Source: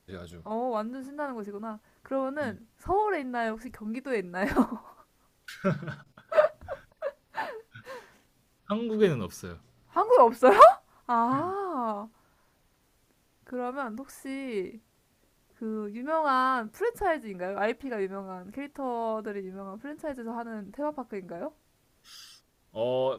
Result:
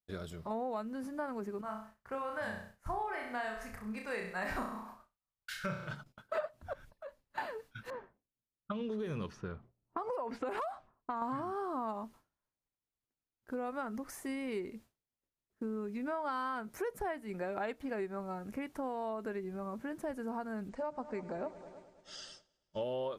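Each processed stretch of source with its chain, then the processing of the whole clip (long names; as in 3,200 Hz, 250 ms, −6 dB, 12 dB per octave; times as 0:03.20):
0:01.61–0:05.93: parametric band 300 Hz −12.5 dB 1.5 octaves + flutter between parallel walls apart 5.6 metres, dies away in 0.49 s + one half of a high-frequency compander decoder only
0:06.73–0:07.38: low-shelf EQ 64 Hz +9.5 dB + downward compressor 2.5 to 1, threshold −50 dBFS
0:07.90–0:11.22: downward compressor 10 to 1, threshold −27 dBFS + low-pass that shuts in the quiet parts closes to 530 Hz, open at −27 dBFS
0:20.69–0:22.82: Butterworth low-pass 8,400 Hz 48 dB per octave + notch filter 290 Hz, Q 7.3 + echo machine with several playback heads 105 ms, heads all three, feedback 61%, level −21 dB
whole clip: downward expander −49 dBFS; downward compressor 5 to 1, threshold −35 dBFS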